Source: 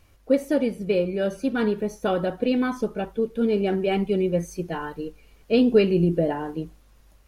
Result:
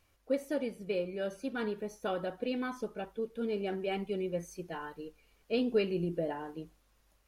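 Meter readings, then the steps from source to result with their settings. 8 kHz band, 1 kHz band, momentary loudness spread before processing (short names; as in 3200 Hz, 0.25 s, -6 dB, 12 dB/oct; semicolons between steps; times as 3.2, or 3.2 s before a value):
n/a, -9.5 dB, 12 LU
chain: low shelf 320 Hz -7.5 dB; gain -8.5 dB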